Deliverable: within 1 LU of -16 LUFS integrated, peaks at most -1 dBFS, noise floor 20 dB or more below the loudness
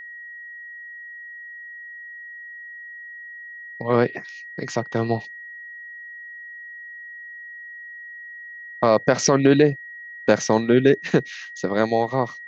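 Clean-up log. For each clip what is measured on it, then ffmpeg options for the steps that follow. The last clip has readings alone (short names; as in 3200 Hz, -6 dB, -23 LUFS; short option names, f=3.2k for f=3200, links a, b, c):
steady tone 1900 Hz; tone level -36 dBFS; loudness -21.0 LUFS; peak -4.0 dBFS; loudness target -16.0 LUFS
-> -af "bandreject=f=1.9k:w=30"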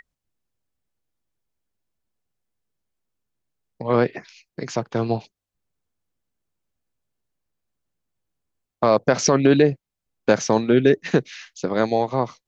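steady tone none; loudness -20.5 LUFS; peak -4.0 dBFS; loudness target -16.0 LUFS
-> -af "volume=4.5dB,alimiter=limit=-1dB:level=0:latency=1"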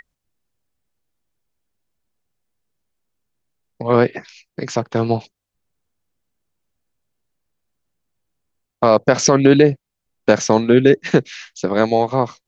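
loudness -16.5 LUFS; peak -1.0 dBFS; noise floor -81 dBFS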